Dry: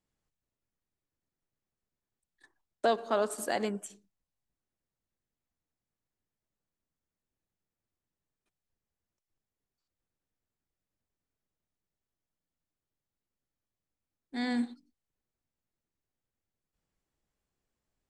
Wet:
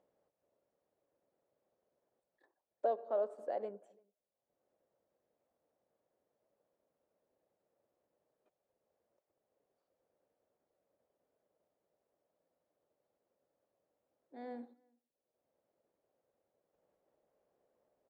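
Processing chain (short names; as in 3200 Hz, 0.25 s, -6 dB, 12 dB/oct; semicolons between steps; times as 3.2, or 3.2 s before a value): in parallel at 0 dB: upward compressor, threshold -37 dBFS; on the sum: band-pass 560 Hz, Q 3.6; outdoor echo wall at 58 m, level -30 dB; gain -7.5 dB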